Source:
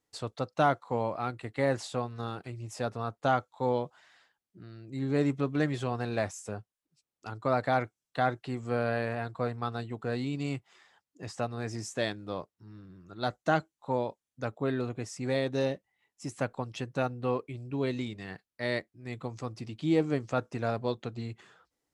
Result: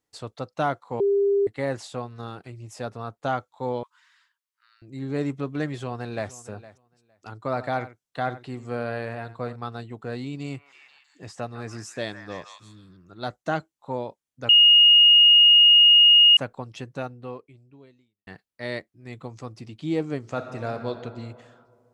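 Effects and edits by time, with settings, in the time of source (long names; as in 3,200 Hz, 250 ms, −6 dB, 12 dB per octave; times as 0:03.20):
0:01.00–0:01.47: beep over 400 Hz −17.5 dBFS
0:03.83–0:04.82: linear-phase brick-wall high-pass 890 Hz
0:05.71–0:06.31: delay throw 460 ms, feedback 15%, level −17.5 dB
0:07.47–0:09.56: single-tap delay 88 ms −15 dB
0:10.41–0:12.97: echo through a band-pass that steps 158 ms, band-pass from 1,300 Hz, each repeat 0.7 octaves, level −4 dB
0:14.49–0:16.37: beep over 2,860 Hz −10.5 dBFS
0:16.87–0:18.27: fade out quadratic
0:20.18–0:20.89: thrown reverb, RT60 2.2 s, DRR 5.5 dB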